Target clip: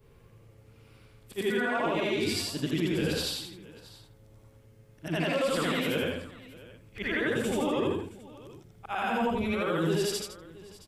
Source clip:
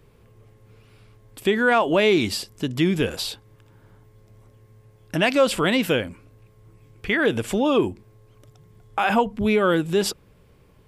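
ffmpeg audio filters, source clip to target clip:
-af "afftfilt=real='re':imag='-im':win_size=8192:overlap=0.75,alimiter=limit=-23dB:level=0:latency=1:release=10,aecho=1:1:43|80|161|670:0.224|0.708|0.251|0.119"

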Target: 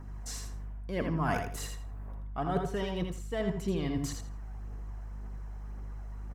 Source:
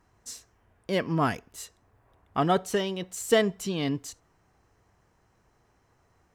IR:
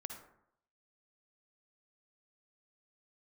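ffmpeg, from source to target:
-filter_complex "[0:a]acrossover=split=5300[a][b];[b]acompressor=threshold=-46dB:ratio=4:attack=1:release=60[c];[a][c]amix=inputs=2:normalize=0,highshelf=f=8.4k:g=4,areverse,acompressor=threshold=-38dB:ratio=12,areverse,aeval=exprs='val(0)+0.00158*(sin(2*PI*50*n/s)+sin(2*PI*2*50*n/s)/2+sin(2*PI*3*50*n/s)/3+sin(2*PI*4*50*n/s)/4+sin(2*PI*5*50*n/s)/5)':c=same,flanger=delay=0:depth=1.5:regen=51:speed=1.9:shape=triangular,aecho=1:1:82|164|246:0.501|0.1|0.02,asplit=2[d][e];[1:a]atrim=start_sample=2205,atrim=end_sample=4410,lowpass=2.3k[f];[e][f]afir=irnorm=-1:irlink=0,volume=4.5dB[g];[d][g]amix=inputs=2:normalize=0,volume=7dB"

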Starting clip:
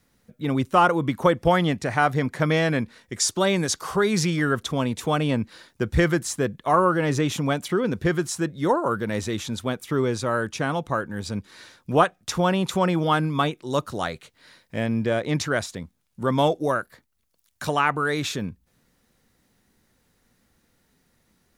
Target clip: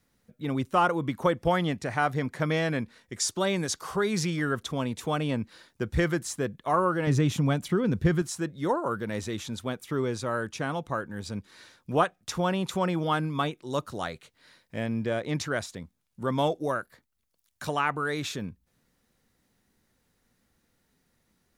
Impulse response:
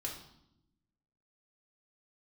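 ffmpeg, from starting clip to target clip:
-filter_complex "[0:a]asettb=1/sr,asplit=3[a][b][c];[a]atrim=end=7.074[d];[b]atrim=start=7.07:end=8.22,asetpts=PTS-STARTPTS,afade=t=in:d=0.004:c=qsin,afade=t=out:st=1.146:d=0.004:c=qsin,bass=f=250:g=9,treble=f=4k:g=0[e];[c]atrim=start=8.216[f];[d][e]acrossfade=d=0.004:c1=hsin:c2=qsin[g];[g][f]acrossfade=d=0.004:c1=qsin:c2=hsin,volume=-5.5dB"

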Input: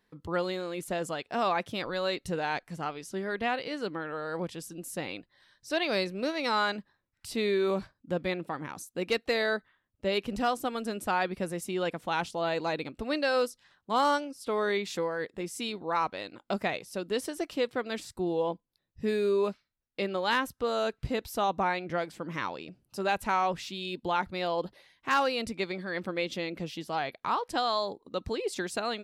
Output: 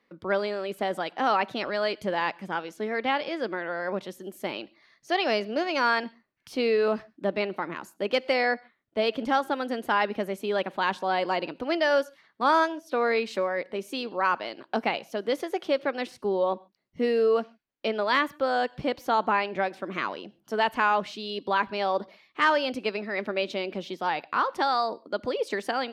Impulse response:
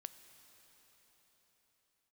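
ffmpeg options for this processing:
-filter_complex "[0:a]acrossover=split=150 3700:gain=0.158 1 0.2[a][b][c];[a][b][c]amix=inputs=3:normalize=0,asetrate=49392,aresample=44100,asplit=2[d][e];[1:a]atrim=start_sample=2205,atrim=end_sample=6615[f];[e][f]afir=irnorm=-1:irlink=0,volume=1.5dB[g];[d][g]amix=inputs=2:normalize=0"

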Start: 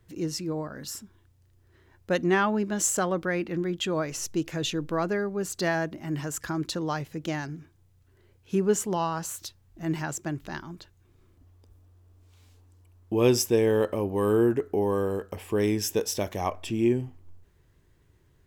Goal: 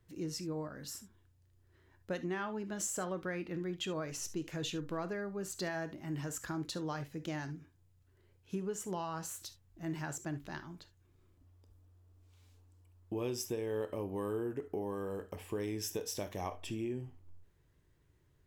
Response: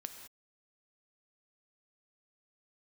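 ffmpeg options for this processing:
-filter_complex "[0:a]acompressor=threshold=-26dB:ratio=6[a];[1:a]atrim=start_sample=2205,atrim=end_sample=3528[b];[a][b]afir=irnorm=-1:irlink=0,volume=-4dB"

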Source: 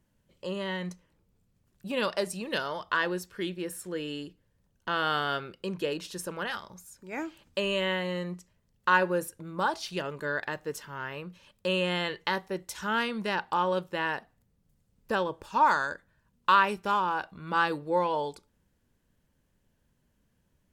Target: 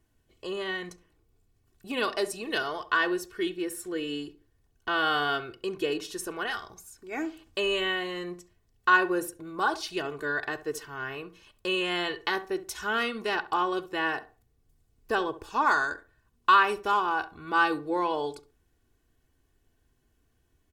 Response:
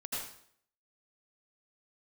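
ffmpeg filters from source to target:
-filter_complex "[0:a]aecho=1:1:2.7:0.72,asplit=2[a][b];[b]adelay=68,lowpass=f=1.2k:p=1,volume=-13dB,asplit=2[c][d];[d]adelay=68,lowpass=f=1.2k:p=1,volume=0.31,asplit=2[e][f];[f]adelay=68,lowpass=f=1.2k:p=1,volume=0.31[g];[c][e][g]amix=inputs=3:normalize=0[h];[a][h]amix=inputs=2:normalize=0"

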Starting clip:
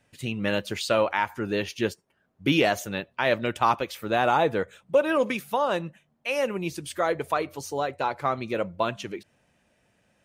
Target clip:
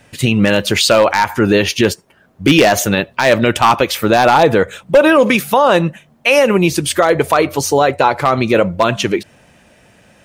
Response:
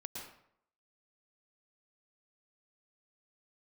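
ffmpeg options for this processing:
-af "aeval=exprs='0.2*(abs(mod(val(0)/0.2+3,4)-2)-1)':c=same,alimiter=level_in=20dB:limit=-1dB:release=50:level=0:latency=1,volume=-1dB"

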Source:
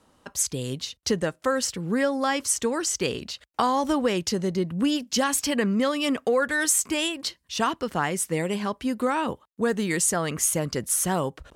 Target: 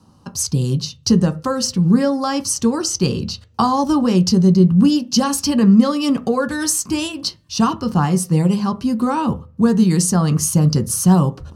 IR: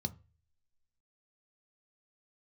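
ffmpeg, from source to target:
-filter_complex "[0:a]asplit=2[a][b];[1:a]atrim=start_sample=2205,lowpass=6.3k[c];[b][c]afir=irnorm=-1:irlink=0,volume=3.5dB[d];[a][d]amix=inputs=2:normalize=0,volume=1dB"

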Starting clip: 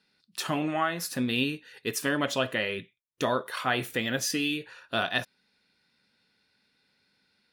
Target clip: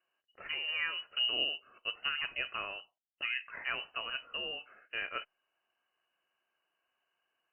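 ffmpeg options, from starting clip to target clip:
-filter_complex "[0:a]asettb=1/sr,asplit=3[a][b][c];[a]atrim=end=0.684[d];[b]atrim=start=0.68:end=2.09,asetpts=PTS-STARTPTS,afade=t=in:d=0.004:c=qsin,afade=t=out:st=1.406:d=0.004:c=qsin,equalizer=f=140:t=o:w=2.5:g=8[e];[c]atrim=start=2.086[f];[d][e]acrossfade=d=0.004:c1=hsin:c2=qsin[g];[g][f]acrossfade=d=0.004:c1=qsin:c2=hsin,lowpass=f=2.6k:t=q:w=0.5098,lowpass=f=2.6k:t=q:w=0.6013,lowpass=f=2.6k:t=q:w=0.9,lowpass=f=2.6k:t=q:w=2.563,afreqshift=-3100,volume=-9dB" -ar 48000 -c:a libopus -b:a 64k

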